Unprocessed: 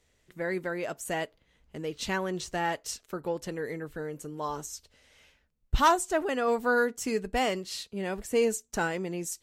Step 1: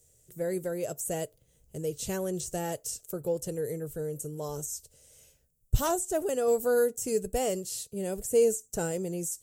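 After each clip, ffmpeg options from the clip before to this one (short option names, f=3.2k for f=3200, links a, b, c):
-filter_complex "[0:a]equalizer=f=125:t=o:w=1:g=10,equalizer=f=250:t=o:w=1:g=-7,equalizer=f=500:t=o:w=1:g=7,equalizer=f=1k:t=o:w=1:g=-11,equalizer=f=2k:t=o:w=1:g=-11,equalizer=f=4k:t=o:w=1:g=-8,equalizer=f=8k:t=o:w=1:g=8,acrossover=split=3600[a][b];[b]acompressor=threshold=-42dB:ratio=4:attack=1:release=60[c];[a][c]amix=inputs=2:normalize=0,aemphasis=mode=production:type=50fm"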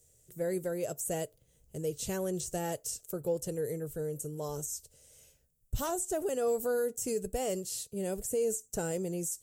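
-af "alimiter=limit=-21.5dB:level=0:latency=1:release=65,volume=-1.5dB"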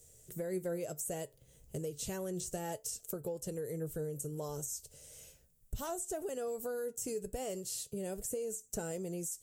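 -af "acompressor=threshold=-43dB:ratio=4,flanger=delay=4.4:depth=3.1:regen=81:speed=0.33:shape=sinusoidal,volume=9.5dB"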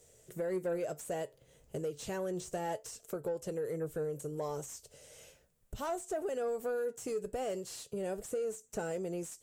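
-filter_complex "[0:a]asplit=2[a][b];[b]highpass=f=720:p=1,volume=15dB,asoftclip=type=tanh:threshold=-24dB[c];[a][c]amix=inputs=2:normalize=0,lowpass=f=1.5k:p=1,volume=-6dB"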